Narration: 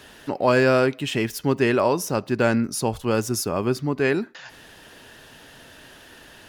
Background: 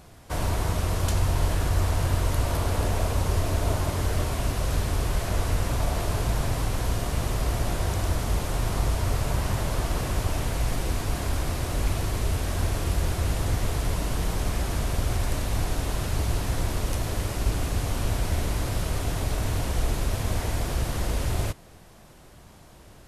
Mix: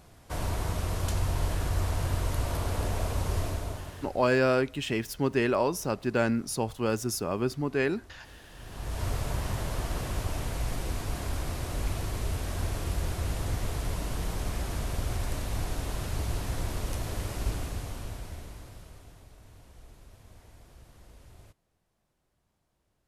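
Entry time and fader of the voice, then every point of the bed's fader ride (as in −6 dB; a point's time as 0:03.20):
3.75 s, −6.0 dB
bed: 0:03.44 −5 dB
0:04.43 −27.5 dB
0:08.44 −27.5 dB
0:09.02 −5.5 dB
0:17.49 −5.5 dB
0:19.32 −26.5 dB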